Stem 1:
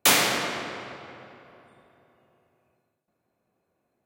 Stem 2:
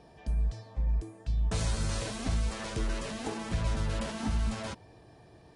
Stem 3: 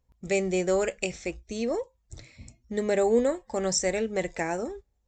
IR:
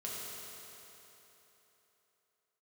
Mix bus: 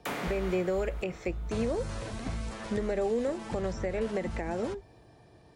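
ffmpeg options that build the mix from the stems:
-filter_complex "[0:a]volume=-10dB,asplit=2[link_01][link_02];[link_02]volume=-12dB[link_03];[1:a]volume=-1.5dB[link_04];[2:a]acrossover=split=4400[link_05][link_06];[link_06]acompressor=threshold=-52dB:ratio=4:attack=1:release=60[link_07];[link_05][link_07]amix=inputs=2:normalize=0,volume=2.5dB[link_08];[link_04][link_08]amix=inputs=2:normalize=0,alimiter=limit=-15.5dB:level=0:latency=1:release=191,volume=0dB[link_09];[3:a]atrim=start_sample=2205[link_10];[link_03][link_10]afir=irnorm=-1:irlink=0[link_11];[link_01][link_09][link_11]amix=inputs=3:normalize=0,acrossover=split=150|630|2300[link_12][link_13][link_14][link_15];[link_12]acompressor=threshold=-34dB:ratio=4[link_16];[link_13]acompressor=threshold=-28dB:ratio=4[link_17];[link_14]acompressor=threshold=-36dB:ratio=4[link_18];[link_15]acompressor=threshold=-50dB:ratio=4[link_19];[link_16][link_17][link_18][link_19]amix=inputs=4:normalize=0,alimiter=limit=-21dB:level=0:latency=1:release=325"

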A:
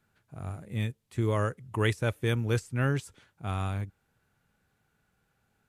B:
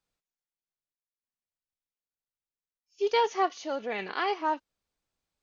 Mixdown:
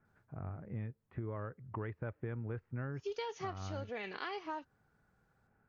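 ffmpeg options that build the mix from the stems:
ffmpeg -i stem1.wav -i stem2.wav -filter_complex "[0:a]lowpass=frequency=1800:width=0.5412,lowpass=frequency=1800:width=1.3066,acompressor=threshold=-47dB:ratio=1.5,volume=0.5dB[link_01];[1:a]equalizer=frequency=810:width=1.5:gain=-3.5,adelay=50,volume=-4.5dB[link_02];[link_01][link_02]amix=inputs=2:normalize=0,acompressor=threshold=-37dB:ratio=6" out.wav

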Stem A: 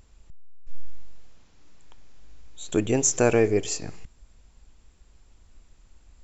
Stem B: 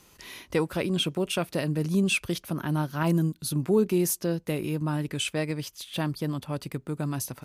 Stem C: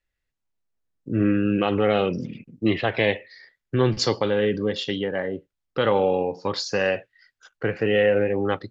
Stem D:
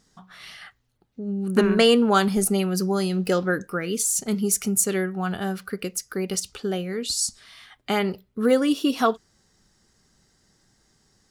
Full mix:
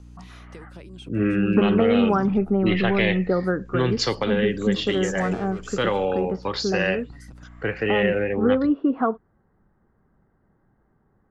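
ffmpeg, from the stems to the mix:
ffmpeg -i stem1.wav -i stem2.wav -i stem3.wav -i stem4.wav -filter_complex "[0:a]volume=25.5dB,asoftclip=hard,volume=-25.5dB,adelay=2000,volume=-9dB[link_01];[1:a]acompressor=threshold=-32dB:ratio=12,volume=-8dB[link_02];[2:a]adynamicequalizer=threshold=0.0112:dfrequency=2000:dqfactor=0.79:tfrequency=2000:tqfactor=0.79:attack=5:release=100:ratio=0.375:range=3:mode=boostabove:tftype=bell,aeval=exprs='val(0)+0.00891*(sin(2*PI*60*n/s)+sin(2*PI*2*60*n/s)/2+sin(2*PI*3*60*n/s)/3+sin(2*PI*4*60*n/s)/4+sin(2*PI*5*60*n/s)/5)':channel_layout=same,volume=-2dB[link_03];[3:a]lowpass=frequency=1400:width=0.5412,lowpass=frequency=1400:width=1.3066,volume=2dB,asplit=2[link_04][link_05];[link_05]apad=whole_len=328201[link_06];[link_02][link_06]sidechaincompress=threshold=-33dB:ratio=8:attack=8.3:release=554[link_07];[link_01][link_07][link_03][link_04]amix=inputs=4:normalize=0,lowpass=frequency=9200:width=0.5412,lowpass=frequency=9200:width=1.3066,acrossover=split=270|3000[link_08][link_09][link_10];[link_09]acompressor=threshold=-20dB:ratio=3[link_11];[link_08][link_11][link_10]amix=inputs=3:normalize=0" out.wav

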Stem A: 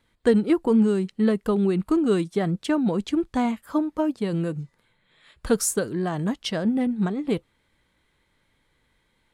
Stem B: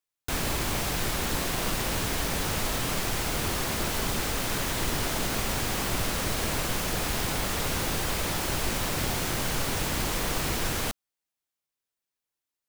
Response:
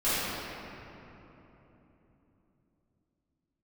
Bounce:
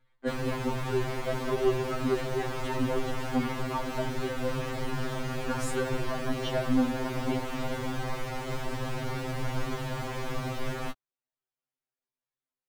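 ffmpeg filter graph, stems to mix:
-filter_complex "[0:a]equalizer=frequency=270:width_type=o:width=1.9:gain=-9,volume=1.5dB,asplit=2[link_01][link_02];[link_02]volume=-21dB[link_03];[1:a]volume=0.5dB[link_04];[2:a]atrim=start_sample=2205[link_05];[link_03][link_05]afir=irnorm=-1:irlink=0[link_06];[link_01][link_04][link_06]amix=inputs=3:normalize=0,lowpass=frequency=1300:poles=1,afftfilt=real='re*2.45*eq(mod(b,6),0)':imag='im*2.45*eq(mod(b,6),0)':win_size=2048:overlap=0.75"

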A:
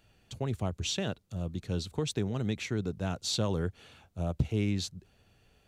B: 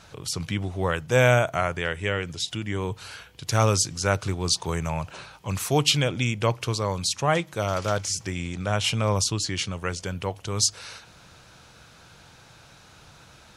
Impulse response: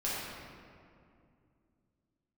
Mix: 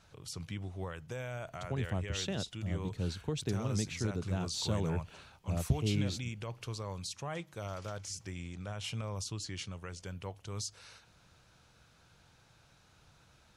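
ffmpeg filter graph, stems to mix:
-filter_complex "[0:a]adelay=1300,volume=-5dB[link_01];[1:a]alimiter=limit=-15.5dB:level=0:latency=1:release=88,volume=-14dB[link_02];[link_01][link_02]amix=inputs=2:normalize=0,lowshelf=frequency=130:gain=5.5"

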